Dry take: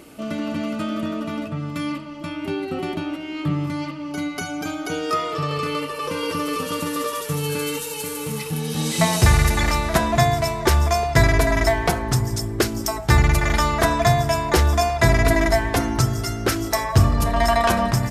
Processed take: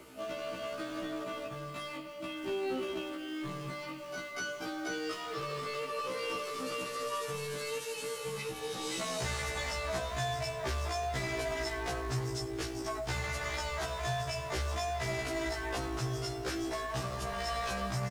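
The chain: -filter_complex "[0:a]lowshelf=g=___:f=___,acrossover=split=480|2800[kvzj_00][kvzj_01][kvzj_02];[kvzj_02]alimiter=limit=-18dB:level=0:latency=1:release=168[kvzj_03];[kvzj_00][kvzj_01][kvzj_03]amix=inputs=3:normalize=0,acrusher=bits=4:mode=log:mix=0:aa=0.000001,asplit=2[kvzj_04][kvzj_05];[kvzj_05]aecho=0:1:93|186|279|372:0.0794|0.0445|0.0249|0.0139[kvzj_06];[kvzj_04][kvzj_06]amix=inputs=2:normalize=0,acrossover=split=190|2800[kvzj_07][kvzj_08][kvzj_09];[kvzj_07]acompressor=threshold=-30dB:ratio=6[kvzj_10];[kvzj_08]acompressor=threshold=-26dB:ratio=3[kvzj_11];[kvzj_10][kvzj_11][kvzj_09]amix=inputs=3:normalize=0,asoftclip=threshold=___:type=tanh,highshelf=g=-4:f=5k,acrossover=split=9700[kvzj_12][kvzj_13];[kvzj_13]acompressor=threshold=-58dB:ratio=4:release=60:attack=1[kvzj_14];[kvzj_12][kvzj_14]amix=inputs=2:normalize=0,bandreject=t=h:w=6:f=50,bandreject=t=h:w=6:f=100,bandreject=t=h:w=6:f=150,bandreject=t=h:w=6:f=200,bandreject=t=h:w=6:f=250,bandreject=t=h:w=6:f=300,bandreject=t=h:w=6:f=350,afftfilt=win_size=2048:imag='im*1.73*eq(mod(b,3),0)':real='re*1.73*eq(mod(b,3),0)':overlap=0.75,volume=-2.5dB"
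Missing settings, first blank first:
-5.5, 290, -24.5dB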